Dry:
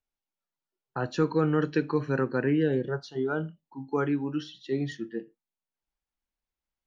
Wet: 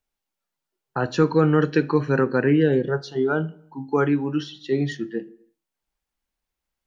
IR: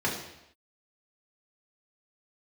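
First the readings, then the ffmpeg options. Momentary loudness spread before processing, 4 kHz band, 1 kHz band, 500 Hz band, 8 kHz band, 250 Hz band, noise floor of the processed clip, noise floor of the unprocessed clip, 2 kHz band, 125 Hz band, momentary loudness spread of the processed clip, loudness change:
12 LU, +6.5 dB, +7.0 dB, +7.0 dB, can't be measured, +6.5 dB, −85 dBFS, below −85 dBFS, +7.0 dB, +7.0 dB, 12 LU, +6.5 dB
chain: -filter_complex "[0:a]asplit=2[link_01][link_02];[1:a]atrim=start_sample=2205,afade=type=out:start_time=0.4:duration=0.01,atrim=end_sample=18081[link_03];[link_02][link_03]afir=irnorm=-1:irlink=0,volume=-28.5dB[link_04];[link_01][link_04]amix=inputs=2:normalize=0,volume=6.5dB"

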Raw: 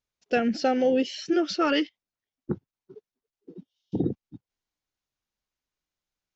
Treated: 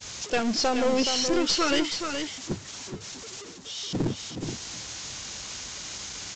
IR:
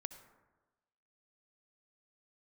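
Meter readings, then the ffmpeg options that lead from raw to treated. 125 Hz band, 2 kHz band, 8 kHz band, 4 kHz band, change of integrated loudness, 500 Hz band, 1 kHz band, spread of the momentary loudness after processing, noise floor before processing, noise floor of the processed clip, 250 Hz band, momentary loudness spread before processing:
+2.0 dB, +2.0 dB, can't be measured, +9.0 dB, −1.5 dB, −1.5 dB, +0.5 dB, 14 LU, below −85 dBFS, −43 dBFS, −1.5 dB, 12 LU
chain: -af "aeval=exprs='val(0)+0.5*0.0266*sgn(val(0))':channel_layout=same,aemphasis=mode=production:type=75fm,agate=range=-33dB:threshold=-22dB:ratio=3:detection=peak,highpass=53,equalizer=frequency=110:width_type=o:width=0.98:gain=4,aresample=16000,aeval=exprs='clip(val(0),-1,0.0531)':channel_layout=same,aresample=44100,aecho=1:1:424:0.447"

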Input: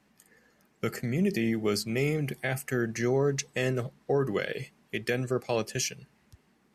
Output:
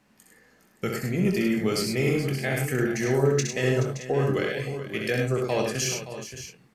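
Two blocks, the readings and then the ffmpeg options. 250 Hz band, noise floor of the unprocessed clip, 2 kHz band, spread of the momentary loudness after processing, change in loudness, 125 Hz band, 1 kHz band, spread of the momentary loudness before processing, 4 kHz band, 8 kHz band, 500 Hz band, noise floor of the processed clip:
+4.0 dB, −67 dBFS, +4.0 dB, 9 LU, +4.0 dB, +5.5 dB, +4.0 dB, 8 LU, +4.0 dB, +4.5 dB, +4.0 dB, −61 dBFS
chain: -filter_complex "[0:a]asplit=2[link_01][link_02];[link_02]asoftclip=type=tanh:threshold=-27.5dB,volume=-12dB[link_03];[link_01][link_03]amix=inputs=2:normalize=0,asplit=2[link_04][link_05];[link_05]adelay=23,volume=-9dB[link_06];[link_04][link_06]amix=inputs=2:normalize=0,aecho=1:1:65|102|426|571|621:0.562|0.562|0.224|0.224|0.188"

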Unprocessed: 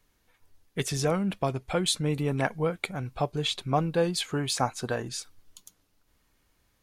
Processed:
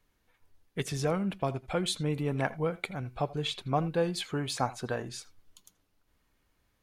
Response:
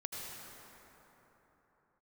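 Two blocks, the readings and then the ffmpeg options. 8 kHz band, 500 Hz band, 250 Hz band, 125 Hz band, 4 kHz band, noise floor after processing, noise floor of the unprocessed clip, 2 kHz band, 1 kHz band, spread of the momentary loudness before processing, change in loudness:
−7.0 dB, −3.0 dB, −3.0 dB, −3.0 dB, −5.0 dB, −74 dBFS, −70 dBFS, −3.5 dB, −3.0 dB, 7 LU, −3.5 dB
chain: -filter_complex "[0:a]asplit=2[link_01][link_02];[1:a]atrim=start_sample=2205,atrim=end_sample=3969,lowpass=4400[link_03];[link_02][link_03]afir=irnorm=-1:irlink=0,volume=-2dB[link_04];[link_01][link_04]amix=inputs=2:normalize=0,volume=-6.5dB"

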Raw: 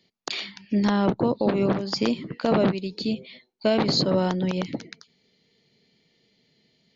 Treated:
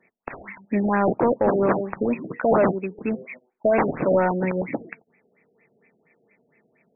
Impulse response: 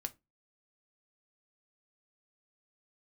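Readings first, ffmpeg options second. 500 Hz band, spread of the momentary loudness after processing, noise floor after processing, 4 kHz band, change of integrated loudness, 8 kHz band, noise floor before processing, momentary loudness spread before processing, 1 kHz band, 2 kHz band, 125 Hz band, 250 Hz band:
+4.0 dB, 15 LU, −68 dBFS, below −40 dB, +2.0 dB, can't be measured, −68 dBFS, 10 LU, +5.5 dB, +4.0 dB, −2.0 dB, −1.0 dB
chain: -filter_complex "[0:a]asplit=2[link_01][link_02];[1:a]atrim=start_sample=2205,highshelf=frequency=2100:gain=-9.5[link_03];[link_02][link_03]afir=irnorm=-1:irlink=0,volume=-13.5dB[link_04];[link_01][link_04]amix=inputs=2:normalize=0,crystalizer=i=5.5:c=0,asplit=2[link_05][link_06];[link_06]highpass=frequency=720:poles=1,volume=21dB,asoftclip=type=tanh:threshold=0dB[link_07];[link_05][link_07]amix=inputs=2:normalize=0,lowpass=frequency=2100:poles=1,volume=-6dB,afftfilt=real='re*lt(b*sr/1024,760*pow(2700/760,0.5+0.5*sin(2*PI*4.3*pts/sr)))':imag='im*lt(b*sr/1024,760*pow(2700/760,0.5+0.5*sin(2*PI*4.3*pts/sr)))':win_size=1024:overlap=0.75,volume=-6dB"

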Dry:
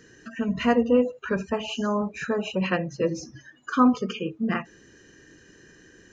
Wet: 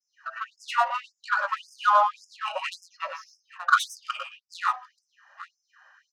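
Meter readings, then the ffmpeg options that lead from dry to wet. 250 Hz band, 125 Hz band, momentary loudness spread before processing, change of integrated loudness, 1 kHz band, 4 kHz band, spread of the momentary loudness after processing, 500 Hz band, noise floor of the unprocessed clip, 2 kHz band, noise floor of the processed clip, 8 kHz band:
below −40 dB, below −40 dB, 10 LU, −1.5 dB, +6.5 dB, +0.5 dB, 18 LU, −11.5 dB, −54 dBFS, +4.5 dB, −81 dBFS, can't be measured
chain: -filter_complex "[0:a]agate=range=-33dB:threshold=-50dB:ratio=3:detection=peak,superequalizer=6b=2.82:7b=2:9b=2.82:10b=3.98:14b=1.58,adynamicsmooth=sensitivity=1.5:basefreq=2000,asplit=2[link_01][link_02];[link_02]aecho=0:1:62|99|116|879:0.1|0.422|0.376|0.106[link_03];[link_01][link_03]amix=inputs=2:normalize=0,afftfilt=real='re*gte(b*sr/1024,530*pow(5000/530,0.5+0.5*sin(2*PI*1.8*pts/sr)))':imag='im*gte(b*sr/1024,530*pow(5000/530,0.5+0.5*sin(2*PI*1.8*pts/sr)))':win_size=1024:overlap=0.75,volume=3.5dB"

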